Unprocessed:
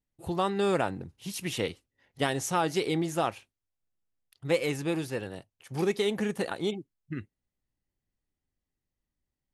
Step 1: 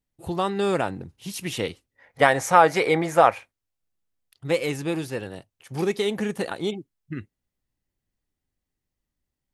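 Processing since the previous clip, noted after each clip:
gain on a spectral selection 0:01.96–0:03.51, 440–2,500 Hz +10 dB
level +3 dB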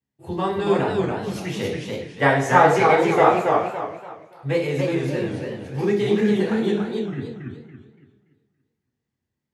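convolution reverb RT60 0.70 s, pre-delay 3 ms, DRR −4 dB
feedback echo with a swinging delay time 283 ms, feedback 34%, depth 148 cents, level −3.5 dB
level −12.5 dB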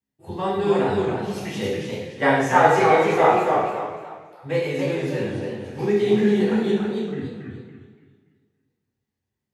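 dense smooth reverb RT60 0.71 s, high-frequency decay 1×, DRR 0.5 dB
level −3.5 dB

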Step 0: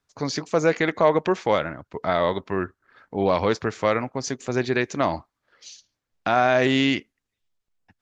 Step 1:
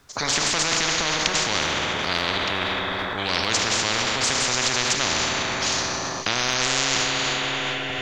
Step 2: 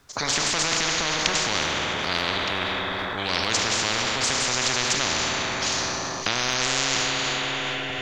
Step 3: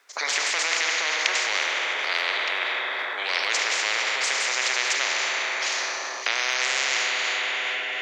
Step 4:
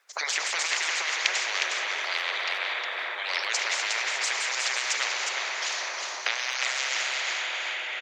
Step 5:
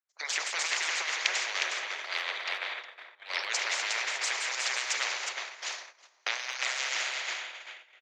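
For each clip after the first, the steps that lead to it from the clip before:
four-comb reverb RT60 2.7 s, combs from 26 ms, DRR 5 dB; transient designer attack −2 dB, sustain +6 dB; every bin compressed towards the loudest bin 10 to 1; level +3 dB
transient designer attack +2 dB, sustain +7 dB; level −2 dB
high-pass filter 420 Hz 24 dB per octave; parametric band 2,100 Hz +9 dB 0.74 octaves; level −3.5 dB
high-pass filter 330 Hz 24 dB per octave; harmonic and percussive parts rebalanced harmonic −17 dB; single-tap delay 361 ms −5 dB
noise gate −29 dBFS, range −29 dB; level −3 dB

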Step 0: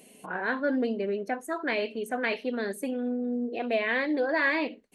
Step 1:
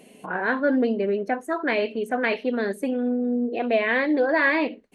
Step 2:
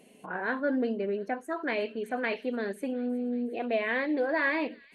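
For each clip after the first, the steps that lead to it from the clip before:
high-shelf EQ 4,700 Hz −11 dB; level +6 dB
delay with a high-pass on its return 363 ms, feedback 76%, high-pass 3,200 Hz, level −18.5 dB; level −7 dB

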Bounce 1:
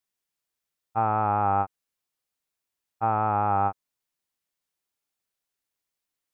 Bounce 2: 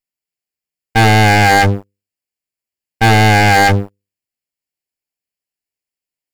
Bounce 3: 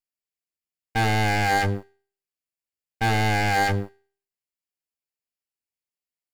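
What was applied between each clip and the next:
lower of the sound and its delayed copy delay 0.4 ms; mains-hum notches 50/100/150/200/250/300/350/400/450/500 Hz; leveller curve on the samples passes 5; level +8 dB
brickwall limiter −11 dBFS, peak gain reduction 5.5 dB; tuned comb filter 79 Hz, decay 0.46 s, harmonics all, mix 40%; level −4 dB

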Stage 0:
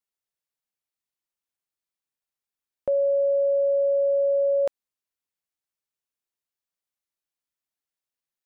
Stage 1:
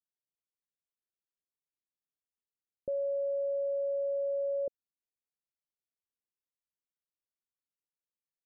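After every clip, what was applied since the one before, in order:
Butterworth low-pass 540 Hz 36 dB per octave
level −6.5 dB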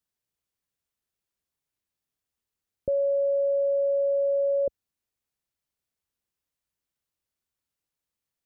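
parametric band 63 Hz +9 dB 2.5 octaves
level +7.5 dB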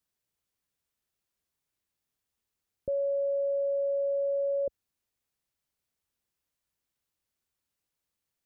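brickwall limiter −27 dBFS, peak gain reduction 7.5 dB
level +1.5 dB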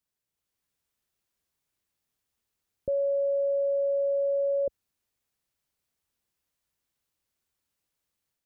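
automatic gain control gain up to 5 dB
level −2.5 dB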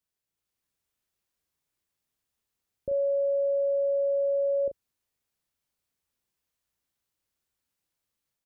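double-tracking delay 36 ms −8 dB
level −2 dB

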